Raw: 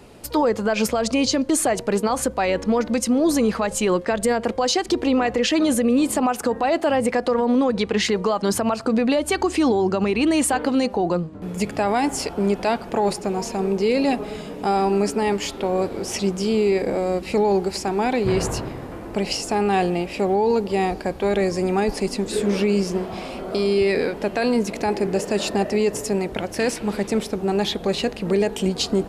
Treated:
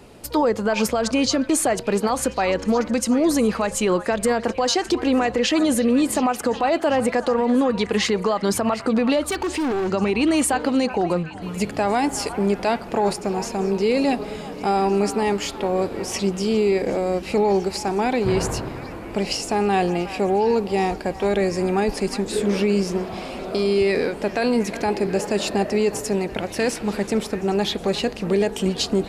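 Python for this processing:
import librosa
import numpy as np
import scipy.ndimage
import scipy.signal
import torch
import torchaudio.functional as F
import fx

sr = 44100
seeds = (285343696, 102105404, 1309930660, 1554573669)

y = fx.echo_stepped(x, sr, ms=366, hz=1200.0, octaves=0.7, feedback_pct=70, wet_db=-9.5)
y = fx.overload_stage(y, sr, gain_db=20.5, at=(9.21, 9.93))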